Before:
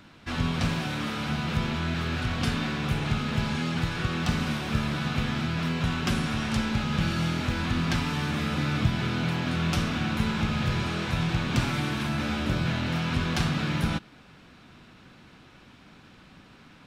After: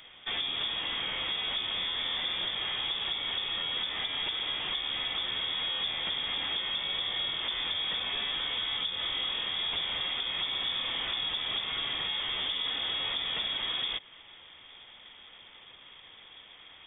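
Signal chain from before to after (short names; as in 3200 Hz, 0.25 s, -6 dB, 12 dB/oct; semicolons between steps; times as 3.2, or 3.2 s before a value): compressor, threshold -29 dBFS, peak gain reduction 11.5 dB; hard clip -28 dBFS, distortion -16 dB; inverted band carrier 3500 Hz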